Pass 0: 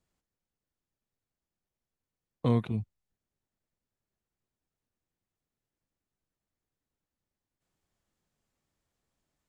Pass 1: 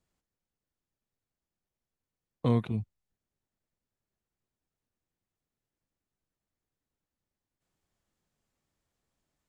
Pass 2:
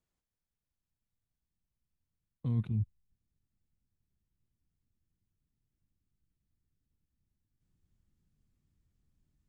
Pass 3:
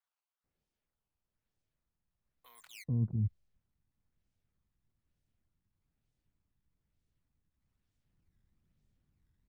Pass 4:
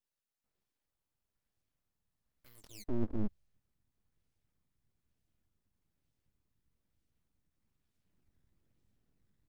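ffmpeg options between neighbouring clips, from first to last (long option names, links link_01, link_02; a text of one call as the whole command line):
ffmpeg -i in.wav -af anull out.wav
ffmpeg -i in.wav -af "asubboost=boost=10:cutoff=200,areverse,acompressor=threshold=-22dB:ratio=6,areverse,volume=-6.5dB" out.wav
ffmpeg -i in.wav -filter_complex "[0:a]acrusher=samples=14:mix=1:aa=0.000001:lfo=1:lforange=22.4:lforate=1.1,acrossover=split=850[link_01][link_02];[link_01]adelay=440[link_03];[link_03][link_02]amix=inputs=2:normalize=0" out.wav
ffmpeg -i in.wav -af "aeval=exprs='abs(val(0))':channel_layout=same,volume=1dB" out.wav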